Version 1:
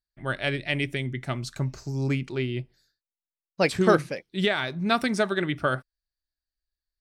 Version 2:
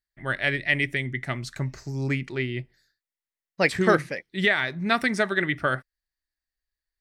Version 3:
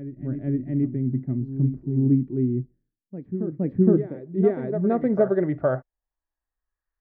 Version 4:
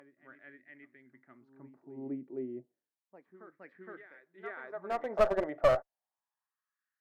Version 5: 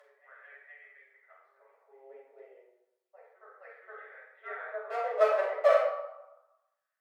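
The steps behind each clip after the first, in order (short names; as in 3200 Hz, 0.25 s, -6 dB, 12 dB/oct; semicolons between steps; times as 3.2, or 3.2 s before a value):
bell 1900 Hz +11 dB 0.43 oct; gain -1 dB
low-pass sweep 270 Hz -> 1200 Hz, 3.83–6.8; reverse echo 0.466 s -10.5 dB; harmonic-percussive split harmonic +5 dB; gain -1.5 dB
LFO high-pass sine 0.31 Hz 620–1700 Hz; one-sided clip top -25.5 dBFS; gain -4 dB
rippled Chebyshev high-pass 440 Hz, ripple 3 dB; flange 0.5 Hz, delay 6.7 ms, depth 6.1 ms, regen +31%; reverb RT60 1.0 s, pre-delay 5 ms, DRR -7 dB; gain -2 dB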